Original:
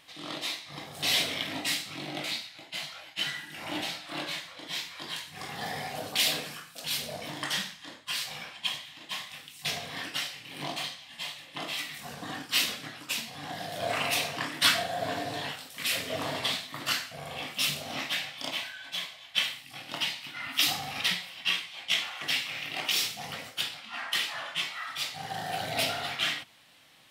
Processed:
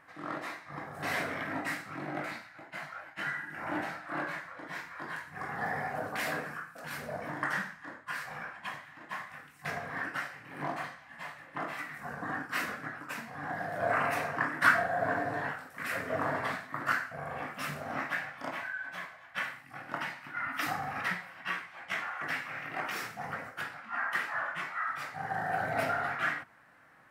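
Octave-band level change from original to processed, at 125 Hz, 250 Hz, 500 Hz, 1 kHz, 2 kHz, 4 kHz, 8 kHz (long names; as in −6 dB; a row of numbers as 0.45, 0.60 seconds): 0.0, 0.0, +1.0, +3.5, +1.0, −19.0, −15.0 decibels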